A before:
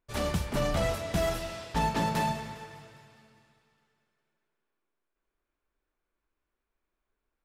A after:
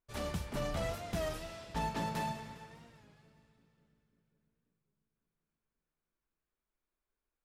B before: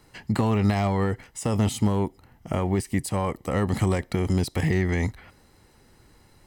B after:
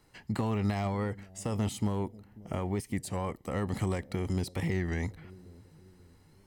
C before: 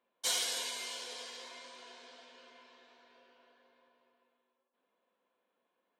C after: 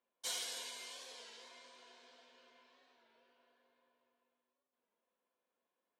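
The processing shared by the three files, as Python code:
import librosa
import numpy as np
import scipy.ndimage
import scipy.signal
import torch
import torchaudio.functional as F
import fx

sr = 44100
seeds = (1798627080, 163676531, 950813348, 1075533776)

y = fx.echo_bbd(x, sr, ms=541, stages=2048, feedback_pct=48, wet_db=-20.0)
y = fx.record_warp(y, sr, rpm=33.33, depth_cents=100.0)
y = y * 10.0 ** (-8.0 / 20.0)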